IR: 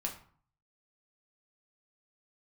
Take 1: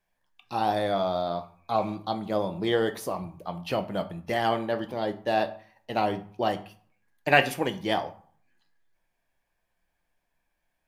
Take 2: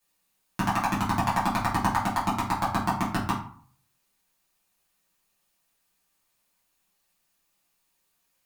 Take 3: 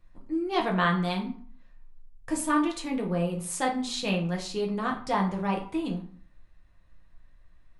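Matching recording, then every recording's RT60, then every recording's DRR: 3; 0.50 s, 0.50 s, 0.50 s; 7.0 dB, -8.5 dB, -0.5 dB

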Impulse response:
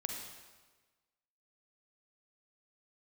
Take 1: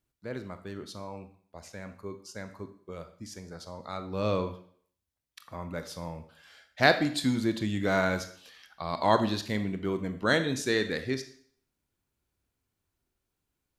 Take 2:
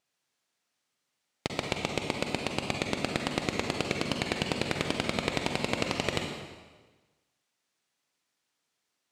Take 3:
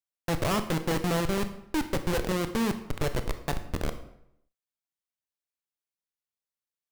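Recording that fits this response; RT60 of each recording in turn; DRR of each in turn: 2; 0.55 s, 1.3 s, 0.75 s; 9.0 dB, 2.0 dB, 9.0 dB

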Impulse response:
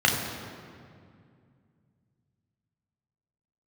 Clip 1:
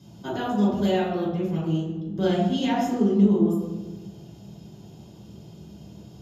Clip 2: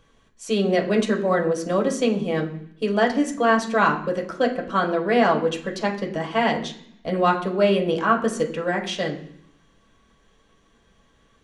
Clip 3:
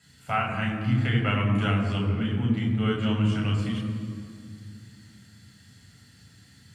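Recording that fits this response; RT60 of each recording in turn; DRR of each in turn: 3; 1.3 s, 0.65 s, 2.3 s; -12.0 dB, -0.5 dB, -0.5 dB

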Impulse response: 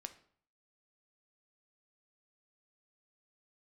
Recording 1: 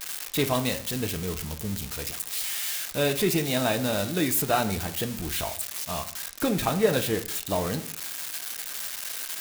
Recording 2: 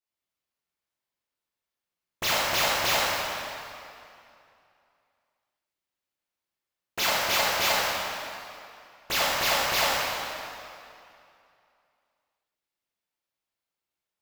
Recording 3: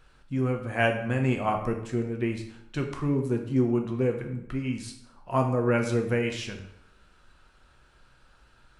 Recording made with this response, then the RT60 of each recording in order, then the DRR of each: 1; 0.55 s, 2.6 s, 0.75 s; 8.0 dB, -9.5 dB, 3.0 dB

